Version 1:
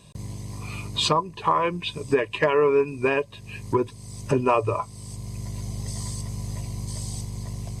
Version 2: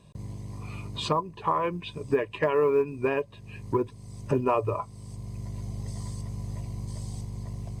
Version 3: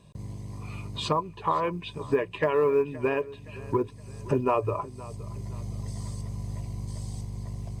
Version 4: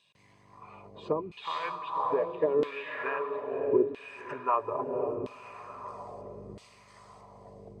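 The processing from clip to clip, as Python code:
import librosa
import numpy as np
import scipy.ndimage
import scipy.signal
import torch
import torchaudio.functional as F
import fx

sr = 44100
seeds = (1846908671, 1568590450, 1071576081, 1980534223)

y1 = fx.high_shelf(x, sr, hz=2300.0, db=-10.0)
y1 = fx.quant_float(y1, sr, bits=6)
y1 = y1 * librosa.db_to_amplitude(-3.0)
y2 = fx.echo_feedback(y1, sr, ms=519, feedback_pct=43, wet_db=-19.0)
y3 = fx.echo_diffused(y2, sr, ms=545, feedback_pct=48, wet_db=-4)
y3 = fx.filter_lfo_bandpass(y3, sr, shape='saw_down', hz=0.76, low_hz=290.0, high_hz=3400.0, q=2.0)
y3 = y3 * librosa.db_to_amplitude(2.5)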